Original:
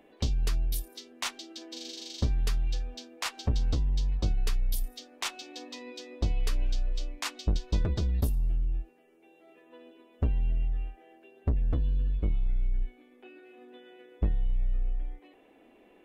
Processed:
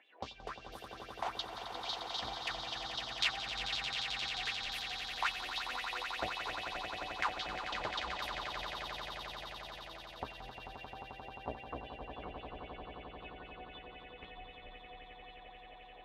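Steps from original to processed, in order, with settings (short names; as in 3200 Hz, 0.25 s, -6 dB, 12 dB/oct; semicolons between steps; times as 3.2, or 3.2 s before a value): wah 3.8 Hz 670–3800 Hz, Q 4.7; swelling echo 88 ms, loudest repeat 8, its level -9 dB; gain +9.5 dB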